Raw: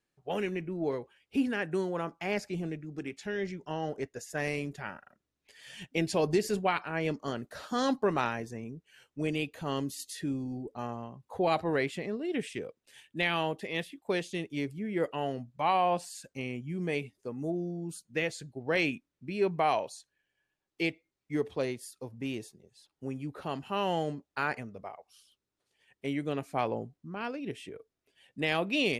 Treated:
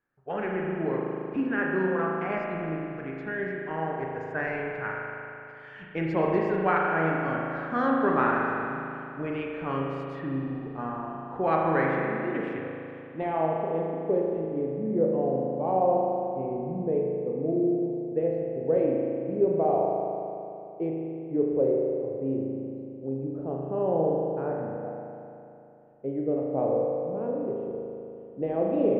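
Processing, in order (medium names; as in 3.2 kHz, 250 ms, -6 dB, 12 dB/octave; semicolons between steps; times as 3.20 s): low-pass sweep 1.5 kHz -> 530 Hz, 12.62–13.70 s; spring tank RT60 2.9 s, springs 37 ms, chirp 45 ms, DRR -2 dB; trim -1 dB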